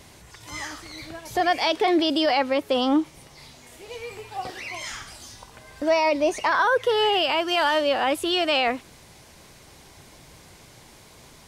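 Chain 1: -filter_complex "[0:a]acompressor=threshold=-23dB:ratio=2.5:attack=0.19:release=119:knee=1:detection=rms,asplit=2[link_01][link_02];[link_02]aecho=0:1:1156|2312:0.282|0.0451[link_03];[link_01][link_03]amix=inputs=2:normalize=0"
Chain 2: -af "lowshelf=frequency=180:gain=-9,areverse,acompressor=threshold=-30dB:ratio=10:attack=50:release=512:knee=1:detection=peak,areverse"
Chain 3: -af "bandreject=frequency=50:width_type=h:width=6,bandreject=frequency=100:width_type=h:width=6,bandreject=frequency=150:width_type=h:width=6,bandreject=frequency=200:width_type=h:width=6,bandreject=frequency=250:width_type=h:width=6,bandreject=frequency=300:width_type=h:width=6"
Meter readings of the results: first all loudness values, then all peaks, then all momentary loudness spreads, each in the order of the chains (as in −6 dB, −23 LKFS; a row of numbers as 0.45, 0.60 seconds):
−29.5, −33.0, −23.0 LKFS; −16.0, −17.0, −9.5 dBFS; 21, 18, 17 LU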